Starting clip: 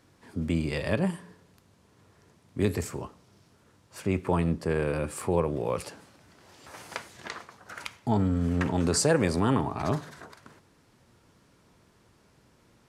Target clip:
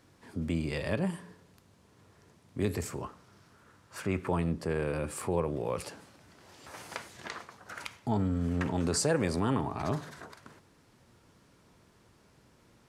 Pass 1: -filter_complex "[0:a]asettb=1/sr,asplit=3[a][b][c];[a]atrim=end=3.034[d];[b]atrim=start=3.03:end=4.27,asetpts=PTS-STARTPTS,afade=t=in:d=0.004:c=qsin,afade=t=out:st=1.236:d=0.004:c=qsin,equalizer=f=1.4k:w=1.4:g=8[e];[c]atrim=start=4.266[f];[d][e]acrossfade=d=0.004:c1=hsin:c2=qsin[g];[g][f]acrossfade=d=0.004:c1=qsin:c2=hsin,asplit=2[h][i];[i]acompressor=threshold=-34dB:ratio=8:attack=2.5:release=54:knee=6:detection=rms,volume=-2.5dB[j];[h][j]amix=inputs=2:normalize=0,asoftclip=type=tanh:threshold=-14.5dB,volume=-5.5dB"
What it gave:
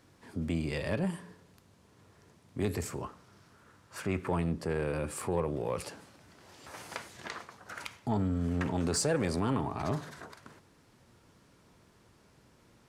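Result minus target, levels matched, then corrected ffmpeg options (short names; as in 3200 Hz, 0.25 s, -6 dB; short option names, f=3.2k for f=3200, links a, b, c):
soft clip: distortion +17 dB
-filter_complex "[0:a]asettb=1/sr,asplit=3[a][b][c];[a]atrim=end=3.034[d];[b]atrim=start=3.03:end=4.27,asetpts=PTS-STARTPTS,afade=t=in:d=0.004:c=qsin,afade=t=out:st=1.236:d=0.004:c=qsin,equalizer=f=1.4k:w=1.4:g=8[e];[c]atrim=start=4.266[f];[d][e]acrossfade=d=0.004:c1=hsin:c2=qsin[g];[g][f]acrossfade=d=0.004:c1=qsin:c2=hsin,asplit=2[h][i];[i]acompressor=threshold=-34dB:ratio=8:attack=2.5:release=54:knee=6:detection=rms,volume=-2.5dB[j];[h][j]amix=inputs=2:normalize=0,asoftclip=type=tanh:threshold=-4.5dB,volume=-5.5dB"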